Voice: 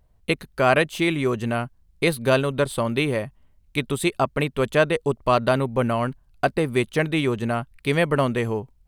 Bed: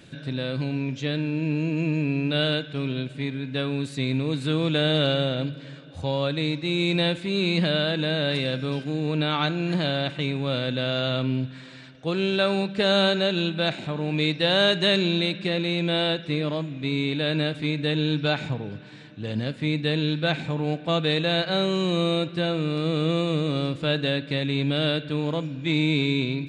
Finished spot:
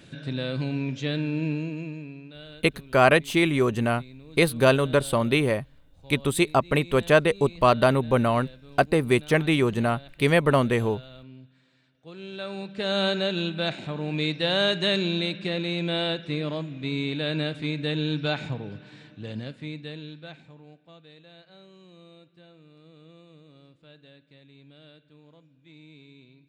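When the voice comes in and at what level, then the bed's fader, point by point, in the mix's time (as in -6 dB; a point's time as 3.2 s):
2.35 s, +0.5 dB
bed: 1.45 s -1 dB
2.34 s -21 dB
11.87 s -21 dB
13.09 s -3 dB
19.09 s -3 dB
21 s -28 dB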